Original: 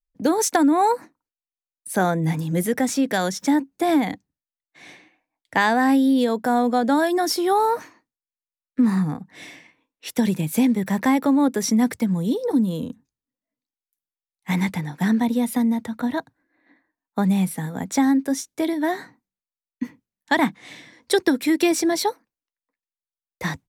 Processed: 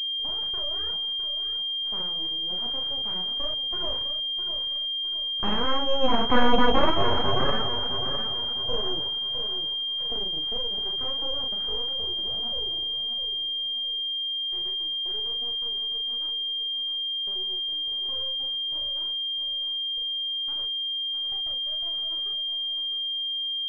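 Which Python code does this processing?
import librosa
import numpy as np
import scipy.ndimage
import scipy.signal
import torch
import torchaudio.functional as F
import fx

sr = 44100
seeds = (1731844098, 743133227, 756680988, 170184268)

p1 = fx.doppler_pass(x, sr, speed_mps=8, closest_m=2.2, pass_at_s=6.44)
p2 = scipy.signal.sosfilt(scipy.signal.butter(4, 55.0, 'highpass', fs=sr, output='sos'), p1)
p3 = fx.rider(p2, sr, range_db=10, speed_s=2.0)
p4 = p2 + F.gain(torch.from_numpy(p3), -2.0).numpy()
p5 = fx.doubler(p4, sr, ms=38.0, db=-3.0)
p6 = p5 + fx.echo_feedback(p5, sr, ms=657, feedback_pct=41, wet_db=-9, dry=0)
p7 = np.abs(p6)
y = fx.pwm(p7, sr, carrier_hz=3200.0)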